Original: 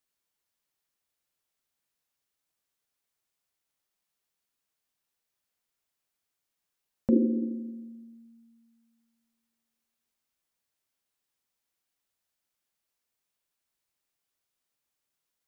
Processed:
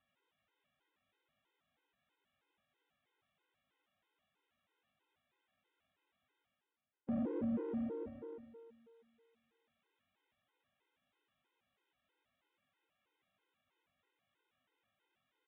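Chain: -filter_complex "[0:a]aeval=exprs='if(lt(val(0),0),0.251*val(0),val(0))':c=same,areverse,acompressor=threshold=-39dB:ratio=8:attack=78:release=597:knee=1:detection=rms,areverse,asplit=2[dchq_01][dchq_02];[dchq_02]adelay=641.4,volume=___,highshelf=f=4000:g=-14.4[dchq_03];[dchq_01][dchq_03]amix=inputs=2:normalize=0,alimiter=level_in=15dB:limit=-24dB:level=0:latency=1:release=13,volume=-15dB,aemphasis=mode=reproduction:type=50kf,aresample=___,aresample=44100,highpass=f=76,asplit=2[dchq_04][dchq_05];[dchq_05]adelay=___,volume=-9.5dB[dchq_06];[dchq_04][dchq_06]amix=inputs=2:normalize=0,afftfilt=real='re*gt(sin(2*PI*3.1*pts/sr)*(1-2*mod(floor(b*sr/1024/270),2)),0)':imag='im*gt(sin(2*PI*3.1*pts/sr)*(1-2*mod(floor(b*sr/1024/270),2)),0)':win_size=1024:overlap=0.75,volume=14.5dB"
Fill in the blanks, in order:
-14dB, 8000, 20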